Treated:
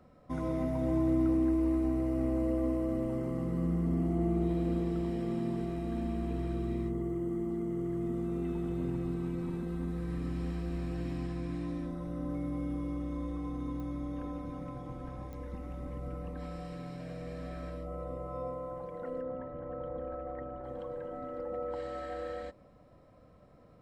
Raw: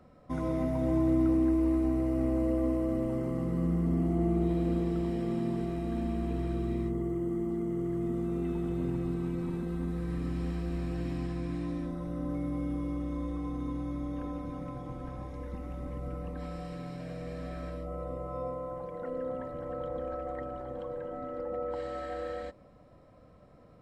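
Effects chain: 19.21–20.64 s: distance through air 390 m; clicks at 13.80/15.33 s, -31 dBFS; trim -2 dB

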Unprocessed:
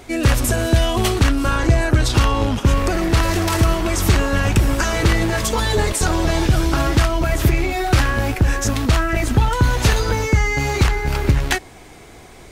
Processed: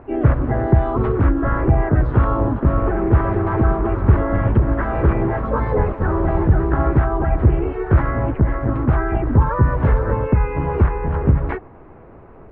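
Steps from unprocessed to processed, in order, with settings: low-pass 1.3 kHz 24 dB/octave; band-stop 740 Hz, Q 12; harmony voices +3 st -4 dB, +4 st -12 dB; trim -1 dB

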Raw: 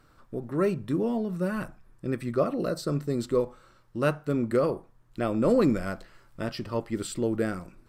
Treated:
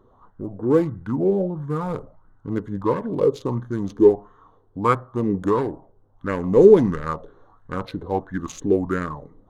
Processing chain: local Wiener filter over 15 samples; tape speed -17%; sweeping bell 1.5 Hz 390–1700 Hz +13 dB; trim +2 dB

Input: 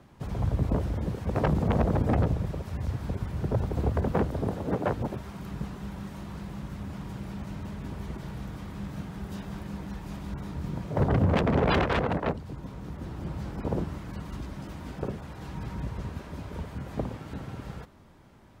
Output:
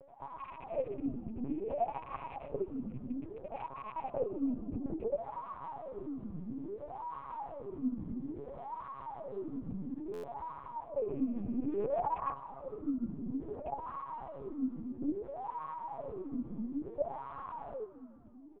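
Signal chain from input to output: rattle on loud lows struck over -24 dBFS, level -18 dBFS; high-pass 88 Hz 12 dB/octave; band-stop 1.6 kHz, Q 9.2; comb 7.3 ms, depth 99%; reverse; compression 10:1, threshold -30 dBFS, peak gain reduction 14.5 dB; reverse; wah-wah 0.59 Hz 210–1100 Hz, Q 12; LPC vocoder at 8 kHz pitch kept; on a send: frequency-shifting echo 153 ms, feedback 61%, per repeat +55 Hz, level -21 dB; on the sum: buffer glitch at 10.13 s, samples 512, times 8; trim +13 dB

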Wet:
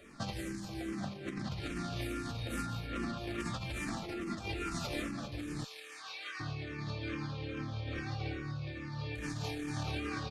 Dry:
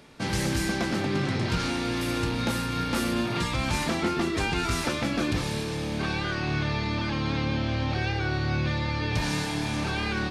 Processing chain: 2.66–3.18 s: low-pass 4.4 kHz 12 dB/octave; delay 186 ms -6.5 dB; reverberation RT60 0.45 s, pre-delay 9 ms, DRR 2.5 dB; peak limiter -19 dBFS, peak gain reduction 9.5 dB; compressor with a negative ratio -29 dBFS, ratio -0.5; 5.64–6.40 s: high-pass 1.3 kHz 12 dB/octave; barber-pole phaser -2.4 Hz; trim -6 dB

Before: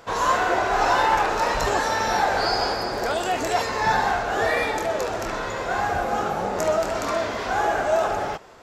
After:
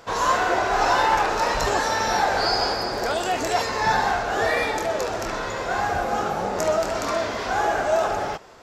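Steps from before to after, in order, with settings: peaking EQ 5.2 kHz +3 dB 0.77 oct

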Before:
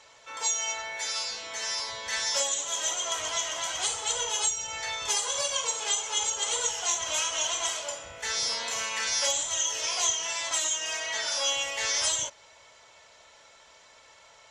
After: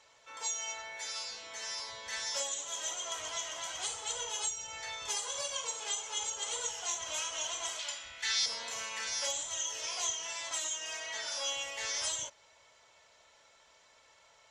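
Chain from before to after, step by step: 7.79–8.46 s: ten-band graphic EQ 125 Hz -11 dB, 500 Hz -10 dB, 2 kHz +6 dB, 4 kHz +10 dB; trim -8 dB

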